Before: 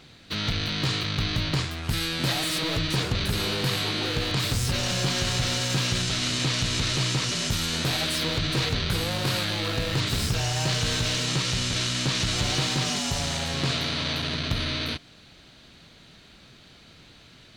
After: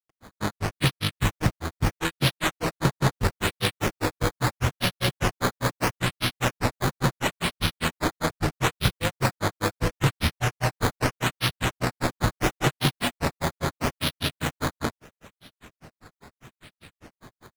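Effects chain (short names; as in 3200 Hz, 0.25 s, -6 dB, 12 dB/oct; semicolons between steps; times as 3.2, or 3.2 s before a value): decimation with a swept rate 11×, swing 100% 0.76 Hz; grains 0.113 s, grains 5/s, pitch spread up and down by 0 st; gain +6.5 dB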